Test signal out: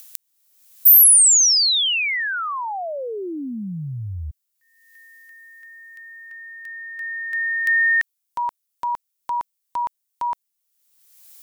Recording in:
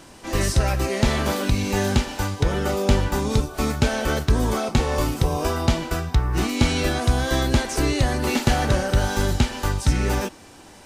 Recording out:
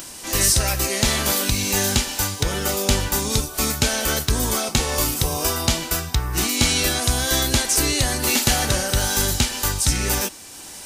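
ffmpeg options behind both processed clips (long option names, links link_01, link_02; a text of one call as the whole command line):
ffmpeg -i in.wav -af "acompressor=mode=upward:threshold=-37dB:ratio=2.5,crystalizer=i=5.5:c=0,volume=-3dB" out.wav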